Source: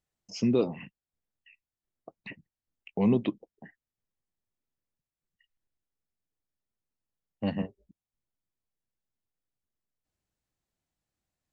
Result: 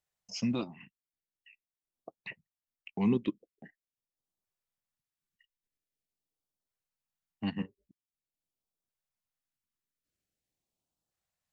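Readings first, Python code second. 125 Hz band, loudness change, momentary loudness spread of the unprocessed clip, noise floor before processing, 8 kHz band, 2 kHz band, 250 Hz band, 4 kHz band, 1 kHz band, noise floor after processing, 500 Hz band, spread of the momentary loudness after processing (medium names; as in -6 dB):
-4.5 dB, -5.5 dB, 21 LU, under -85 dBFS, no reading, -0.5 dB, -4.0 dB, 0.0 dB, -3.5 dB, under -85 dBFS, -9.0 dB, 23 LU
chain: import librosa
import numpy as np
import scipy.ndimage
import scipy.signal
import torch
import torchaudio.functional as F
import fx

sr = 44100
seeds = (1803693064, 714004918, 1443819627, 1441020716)

y = fx.low_shelf(x, sr, hz=140.0, db=-9.0)
y = fx.transient(y, sr, attack_db=1, sustain_db=-7)
y = fx.filter_lfo_notch(y, sr, shape='saw_up', hz=0.45, low_hz=240.0, high_hz=2400.0, q=0.98)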